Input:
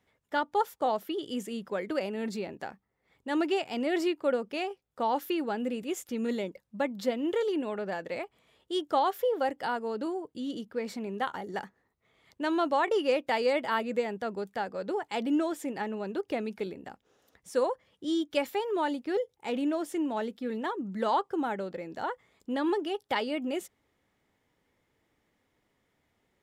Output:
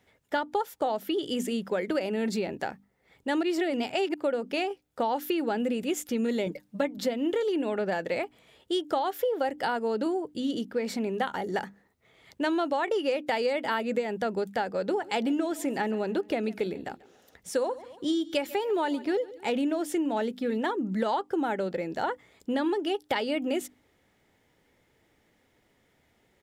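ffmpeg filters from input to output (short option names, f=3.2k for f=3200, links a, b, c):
-filter_complex "[0:a]asettb=1/sr,asplit=3[a][b][c];[a]atrim=end=6.464[d];[b]atrim=start=6.46:end=6.98,asetpts=PTS-STARTPTS,afade=t=in:d=0.004:c=qsin,afade=t=out:st=0.516:d=0.004:c=qsin,aecho=1:1:6.7:0.91,atrim=end_sample=22932[e];[c]atrim=start=6.976[f];[d][e]acrossfade=d=0.004:c1=hsin:c2=qsin[g];[g][f]acrossfade=d=0.004:c1=qsin:c2=hsin,asplit=3[h][i][j];[h]afade=t=out:st=14.99:d=0.02[k];[i]aecho=1:1:140|280|420:0.0794|0.0373|0.0175,afade=t=in:st=14.99:d=0.02,afade=t=out:st=19.49:d=0.02[l];[j]afade=t=in:st=19.49:d=0.02[m];[k][l][m]amix=inputs=3:normalize=0,asplit=3[n][o][p];[n]atrim=end=3.432[q];[o]atrim=start=3.428:end=4.142,asetpts=PTS-STARTPTS,areverse[r];[p]atrim=start=4.138[s];[q][r]acrossfade=d=0.004:c1=hsin:c2=hsin[t];[t][s]acrossfade=d=0.004:c1=hsin:c2=hsin,equalizer=f=1.1k:t=o:w=0.33:g=-5.5,bandreject=f=50:t=h:w=6,bandreject=f=100:t=h:w=6,bandreject=f=150:t=h:w=6,bandreject=f=200:t=h:w=6,bandreject=f=250:t=h:w=6,bandreject=f=300:t=h:w=6,acompressor=threshold=-32dB:ratio=6,volume=7.5dB"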